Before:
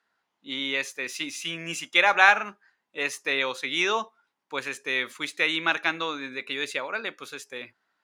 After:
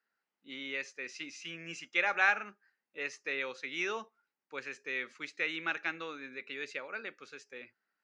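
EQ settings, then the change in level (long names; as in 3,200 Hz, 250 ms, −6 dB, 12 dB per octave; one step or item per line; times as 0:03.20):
loudspeaker in its box 150–5,900 Hz, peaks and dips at 290 Hz −3 dB, 680 Hz −6 dB, 1,000 Hz −9 dB, 3,500 Hz −10 dB
−8.0 dB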